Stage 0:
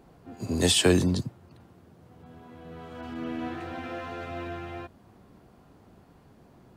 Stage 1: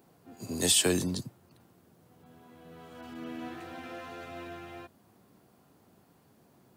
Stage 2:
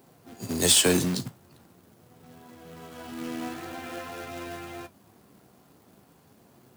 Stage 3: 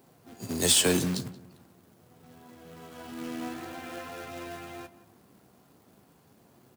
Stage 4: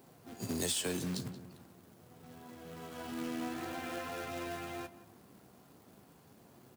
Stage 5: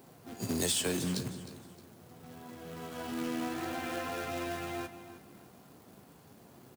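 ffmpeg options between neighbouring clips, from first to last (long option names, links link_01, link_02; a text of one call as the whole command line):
ffmpeg -i in.wav -af "highpass=110,aemphasis=mode=production:type=50kf,volume=-6.5dB" out.wav
ffmpeg -i in.wav -af "acrusher=bits=2:mode=log:mix=0:aa=0.000001,flanger=delay=7.6:depth=8.7:regen=-53:speed=0.44:shape=sinusoidal,volume=8.5dB" out.wav
ffmpeg -i in.wav -filter_complex "[0:a]asplit=2[link_01][link_02];[link_02]adelay=178,lowpass=frequency=2000:poles=1,volume=-15dB,asplit=2[link_03][link_04];[link_04]adelay=178,lowpass=frequency=2000:poles=1,volume=0.31,asplit=2[link_05][link_06];[link_06]adelay=178,lowpass=frequency=2000:poles=1,volume=0.31[link_07];[link_01][link_03][link_05][link_07]amix=inputs=4:normalize=0,volume=-2.5dB" out.wav
ffmpeg -i in.wav -af "acompressor=threshold=-34dB:ratio=4" out.wav
ffmpeg -i in.wav -af "aecho=1:1:310|620|930:0.178|0.0587|0.0194,volume=3.5dB" out.wav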